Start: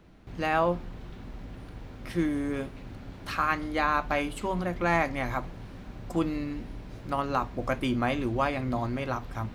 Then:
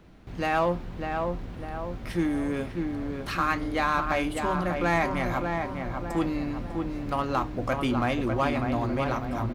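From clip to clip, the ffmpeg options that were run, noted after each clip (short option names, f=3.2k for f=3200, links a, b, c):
-filter_complex "[0:a]asplit=2[a][b];[b]adelay=599,lowpass=f=1.7k:p=1,volume=-5dB,asplit=2[c][d];[d]adelay=599,lowpass=f=1.7k:p=1,volume=0.49,asplit=2[e][f];[f]adelay=599,lowpass=f=1.7k:p=1,volume=0.49,asplit=2[g][h];[h]adelay=599,lowpass=f=1.7k:p=1,volume=0.49,asplit=2[i][j];[j]adelay=599,lowpass=f=1.7k:p=1,volume=0.49,asplit=2[k][l];[l]adelay=599,lowpass=f=1.7k:p=1,volume=0.49[m];[a][c][e][g][i][k][m]amix=inputs=7:normalize=0,asplit=2[n][o];[o]asoftclip=type=hard:threshold=-28.5dB,volume=-5dB[p];[n][p]amix=inputs=2:normalize=0,volume=-1.5dB"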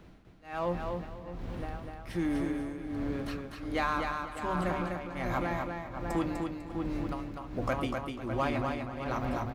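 -af "acompressor=threshold=-29dB:ratio=2,tremolo=f=1.3:d=1,aecho=1:1:249|498|747:0.596|0.149|0.0372"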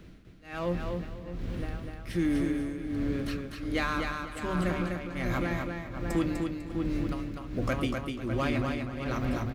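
-af "equalizer=f=850:w=1.4:g=-11,volume=4.5dB"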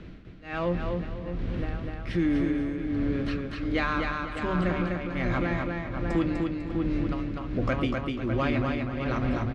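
-filter_complex "[0:a]lowpass=3.7k,asplit=2[a][b];[b]acompressor=threshold=-36dB:ratio=6,volume=1dB[c];[a][c]amix=inputs=2:normalize=0"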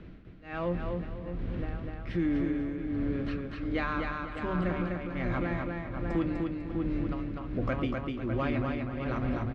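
-af "lowpass=f=2.7k:p=1,volume=-3.5dB"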